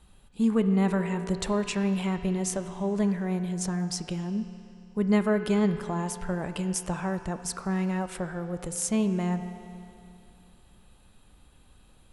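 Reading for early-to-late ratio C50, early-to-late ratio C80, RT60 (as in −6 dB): 9.0 dB, 9.5 dB, 2.6 s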